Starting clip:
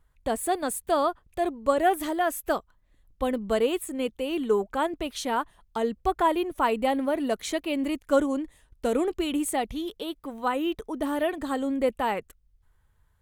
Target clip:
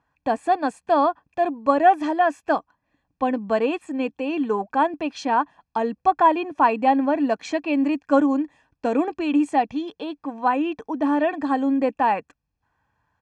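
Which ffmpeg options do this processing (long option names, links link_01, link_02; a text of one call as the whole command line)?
ffmpeg -i in.wav -af "highpass=160,equalizer=frequency=290:width_type=q:width=4:gain=10,equalizer=frequency=450:width_type=q:width=4:gain=9,equalizer=frequency=790:width_type=q:width=4:gain=4,equalizer=frequency=1200:width_type=q:width=4:gain=9,equalizer=frequency=2500:width_type=q:width=4:gain=4,equalizer=frequency=3600:width_type=q:width=4:gain=-8,lowpass=frequency=5700:width=0.5412,lowpass=frequency=5700:width=1.3066,aecho=1:1:1.2:0.7" out.wav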